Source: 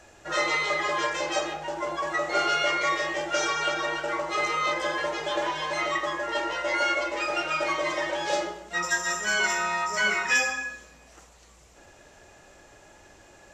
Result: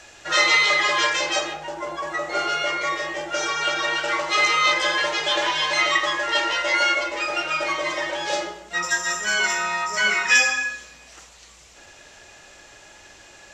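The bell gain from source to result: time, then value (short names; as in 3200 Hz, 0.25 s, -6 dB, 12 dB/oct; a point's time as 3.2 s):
bell 3800 Hz 2.9 oct
1.11 s +12.5 dB
1.77 s +1 dB
3.36 s +1 dB
4.07 s +13 dB
6.49 s +13 dB
7.17 s +5 dB
9.93 s +5 dB
10.63 s +11.5 dB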